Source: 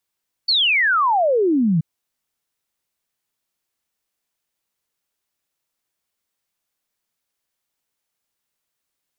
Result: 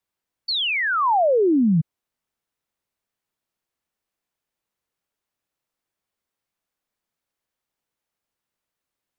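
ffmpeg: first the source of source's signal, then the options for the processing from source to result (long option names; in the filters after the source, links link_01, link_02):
-f lavfi -i "aevalsrc='0.2*clip(min(t,1.33-t)/0.01,0,1)*sin(2*PI*4600*1.33/log(150/4600)*(exp(log(150/4600)*t/1.33)-1))':duration=1.33:sample_rate=44100"
-filter_complex "[0:a]highshelf=frequency=2600:gain=-8.5,acrossover=split=200|300|870[link_01][link_02][link_03][link_04];[link_04]alimiter=limit=-20dB:level=0:latency=1[link_05];[link_01][link_02][link_03][link_05]amix=inputs=4:normalize=0"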